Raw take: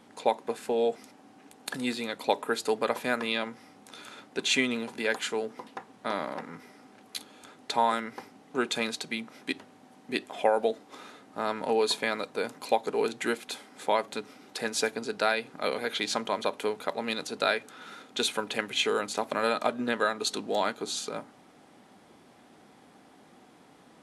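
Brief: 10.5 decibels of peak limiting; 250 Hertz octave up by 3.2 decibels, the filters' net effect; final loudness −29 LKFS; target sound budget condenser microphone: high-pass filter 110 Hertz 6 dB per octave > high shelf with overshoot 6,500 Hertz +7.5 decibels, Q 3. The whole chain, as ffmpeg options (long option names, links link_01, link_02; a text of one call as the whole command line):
ffmpeg -i in.wav -af "equalizer=frequency=250:width_type=o:gain=4.5,alimiter=limit=-18.5dB:level=0:latency=1,highpass=frequency=110:poles=1,highshelf=frequency=6500:width_type=q:width=3:gain=7.5,volume=2.5dB" out.wav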